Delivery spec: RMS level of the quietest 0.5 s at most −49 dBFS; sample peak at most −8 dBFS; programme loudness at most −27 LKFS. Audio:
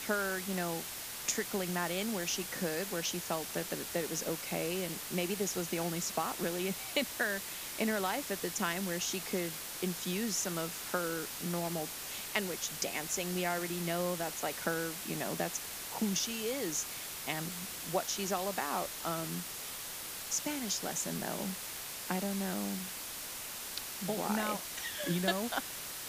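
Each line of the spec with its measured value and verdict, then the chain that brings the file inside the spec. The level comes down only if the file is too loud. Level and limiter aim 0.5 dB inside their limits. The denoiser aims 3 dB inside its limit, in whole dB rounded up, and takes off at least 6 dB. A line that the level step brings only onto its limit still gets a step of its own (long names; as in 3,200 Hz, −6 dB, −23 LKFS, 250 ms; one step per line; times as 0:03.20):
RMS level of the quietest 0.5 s −43 dBFS: out of spec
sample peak −15.5 dBFS: in spec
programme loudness −35.0 LKFS: in spec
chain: broadband denoise 9 dB, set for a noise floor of −43 dBFS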